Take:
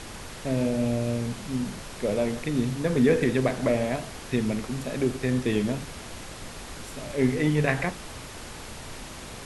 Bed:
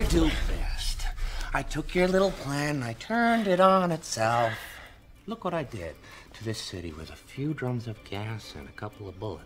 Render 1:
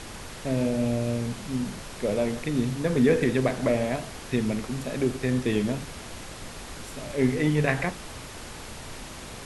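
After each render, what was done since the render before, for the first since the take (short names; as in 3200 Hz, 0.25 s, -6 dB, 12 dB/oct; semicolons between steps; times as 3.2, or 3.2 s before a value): nothing audible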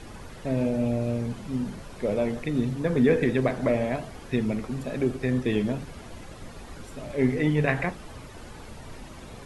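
denoiser 10 dB, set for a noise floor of -41 dBFS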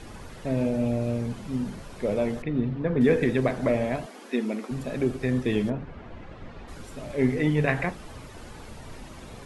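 2.42–3.01 air absorption 330 m; 4.06–4.71 brick-wall FIR high-pass 200 Hz; 5.69–6.67 LPF 1800 Hz -> 3300 Hz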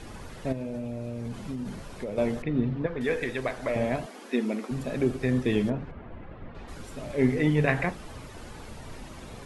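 0.52–2.18 compressor 12:1, threshold -29 dBFS; 2.86–3.76 bell 180 Hz -13 dB 2.7 oct; 5.91–6.55 air absorption 350 m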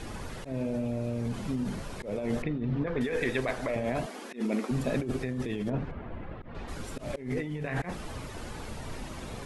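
negative-ratio compressor -30 dBFS, ratio -1; auto swell 0.105 s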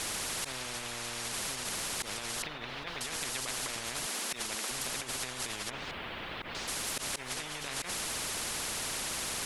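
compressor, threshold -31 dBFS, peak gain reduction 6.5 dB; spectral compressor 10:1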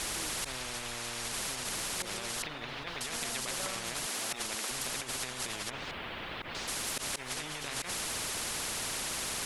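add bed -25.5 dB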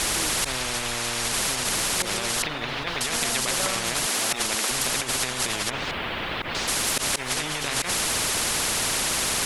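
gain +11 dB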